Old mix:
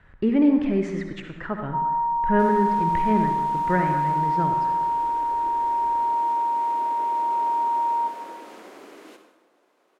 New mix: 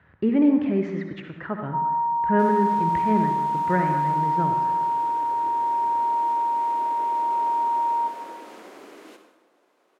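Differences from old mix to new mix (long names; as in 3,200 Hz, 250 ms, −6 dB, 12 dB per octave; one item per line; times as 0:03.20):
speech: add high-frequency loss of the air 170 metres
master: add high-pass filter 74 Hz 24 dB per octave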